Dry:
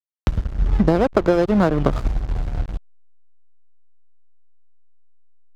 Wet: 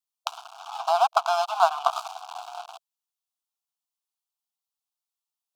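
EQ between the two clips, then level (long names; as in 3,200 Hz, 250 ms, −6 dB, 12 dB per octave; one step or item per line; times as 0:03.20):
linear-phase brick-wall high-pass 660 Hz
Butterworth band-reject 1,900 Hz, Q 1.3
+6.0 dB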